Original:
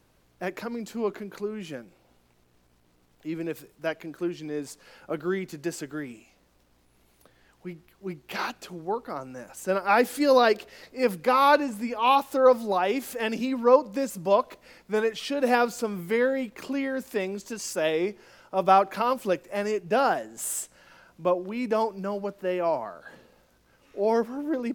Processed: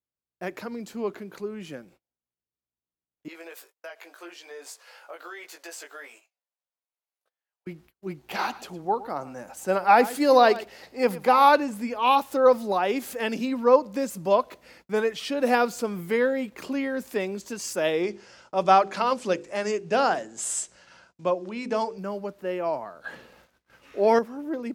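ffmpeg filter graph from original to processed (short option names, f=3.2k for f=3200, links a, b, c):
-filter_complex "[0:a]asettb=1/sr,asplit=3[a][b][c];[a]atrim=end=3.284[d];[b]atrim=start=3.28:end=7.67,asetpts=PTS-STARTPTS,afade=t=in:d=0.004:c=qsin,afade=t=out:st=4.386:d=0.004:c=qsin,highpass=f=560:w=0.5412,highpass=f=560:w=1.3066,asplit=2[e][f];[f]adelay=18,volume=-3dB[g];[e][g]amix=inputs=2:normalize=0,atrim=end_sample=193599,acompressor=threshold=-37dB:ratio=5:attack=3.2:release=140:knee=1:detection=peak[h];[c]atrim=start=7.666[i];[d][h]acrossfade=d=0.004:c1=hsin:c2=qsin[j];[j][i]acrossfade=d=0.004:c1=qsin:c2=hsin,asettb=1/sr,asplit=3[k][l][m];[k]atrim=end=8.194[n];[l]atrim=start=8.19:end=11.49,asetpts=PTS-STARTPTS,afade=t=in:d=0.004:c=qsin,afade=t=out:st=3.296:d=0.004:c=qsin,equalizer=f=790:w=3.3:g=7,aecho=1:1:111:0.141,atrim=end_sample=145530[o];[m]atrim=start=11.486[p];[n][o]acrossfade=d=0.004:c1=hsin:c2=qsin[q];[q][p]acrossfade=d=0.004:c1=qsin:c2=hsin,asettb=1/sr,asplit=3[r][s][t];[r]atrim=end=18.034[u];[s]atrim=start=18.03:end=21.98,asetpts=PTS-STARTPTS,afade=t=in:d=0.004:c=qsin,afade=t=out:st=3.946:d=0.004:c=qsin,lowpass=f=7.6k:w=0.5412,lowpass=f=7.6k:w=1.3066,highshelf=f=5.4k:g=10.5,bandreject=f=50:t=h:w=6,bandreject=f=100:t=h:w=6,bandreject=f=150:t=h:w=6,bandreject=f=200:t=h:w=6,bandreject=f=250:t=h:w=6,bandreject=f=300:t=h:w=6,bandreject=f=350:t=h:w=6,bandreject=f=400:t=h:w=6,bandreject=f=450:t=h:w=6,bandreject=f=500:t=h:w=6[v];[t]atrim=start=21.976[w];[u][v]acrossfade=d=0.004:c1=hsin:c2=qsin[x];[x][w]acrossfade=d=0.004:c1=qsin:c2=hsin,asettb=1/sr,asplit=3[y][z][aa];[y]atrim=end=23.044[ab];[z]atrim=start=23.04:end=24.19,asetpts=PTS-STARTPTS,afade=t=in:d=0.004:c=qsin,afade=t=out:st=1.146:d=0.004:c=qsin,acontrast=22,equalizer=f=2k:t=o:w=2.5:g=7[ac];[aa]atrim=start=24.186[ad];[ab][ac]acrossfade=d=0.004:c1=hsin:c2=qsin[ae];[ae][ad]acrossfade=d=0.004:c1=qsin:c2=hsin,agate=range=-34dB:threshold=-53dB:ratio=16:detection=peak,highpass=42,dynaudnorm=f=490:g=17:m=3dB,volume=-1.5dB"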